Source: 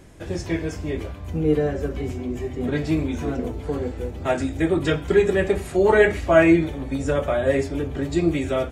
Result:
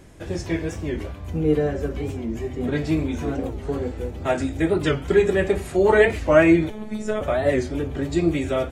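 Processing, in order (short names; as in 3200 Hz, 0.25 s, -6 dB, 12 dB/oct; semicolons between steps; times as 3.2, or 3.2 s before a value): 6.7–7.21 robotiser 214 Hz; record warp 45 rpm, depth 160 cents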